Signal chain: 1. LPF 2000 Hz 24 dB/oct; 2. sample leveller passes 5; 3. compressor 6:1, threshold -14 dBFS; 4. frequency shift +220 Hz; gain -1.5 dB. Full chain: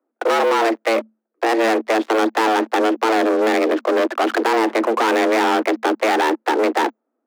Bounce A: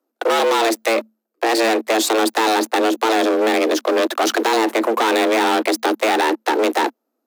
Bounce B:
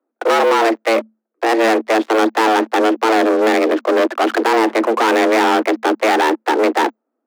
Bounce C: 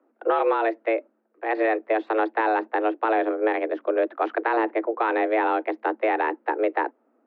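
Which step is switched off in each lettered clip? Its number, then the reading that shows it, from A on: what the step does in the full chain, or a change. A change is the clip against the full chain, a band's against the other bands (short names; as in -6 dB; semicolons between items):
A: 1, 8 kHz band +8.0 dB; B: 3, mean gain reduction 2.5 dB; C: 2, 4 kHz band -13.0 dB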